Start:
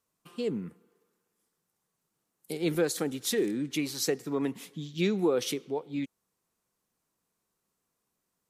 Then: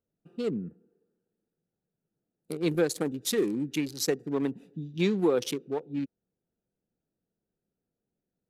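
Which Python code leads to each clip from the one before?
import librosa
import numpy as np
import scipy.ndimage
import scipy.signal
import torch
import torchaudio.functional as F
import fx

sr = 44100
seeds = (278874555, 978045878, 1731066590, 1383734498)

y = fx.wiener(x, sr, points=41)
y = F.gain(torch.from_numpy(y), 2.0).numpy()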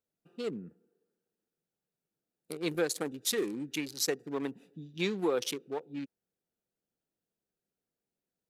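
y = fx.low_shelf(x, sr, hz=410.0, db=-10.5)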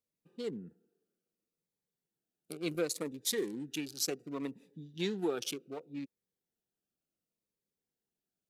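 y = fx.notch_cascade(x, sr, direction='falling', hz=0.68)
y = F.gain(torch.from_numpy(y), -2.0).numpy()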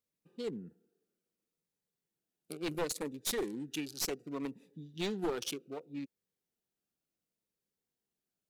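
y = np.minimum(x, 2.0 * 10.0 ** (-30.0 / 20.0) - x)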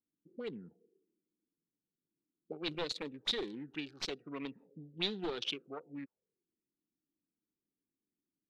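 y = fx.envelope_lowpass(x, sr, base_hz=300.0, top_hz=3800.0, q=4.6, full_db=-33.5, direction='up')
y = F.gain(torch.from_numpy(y), -4.0).numpy()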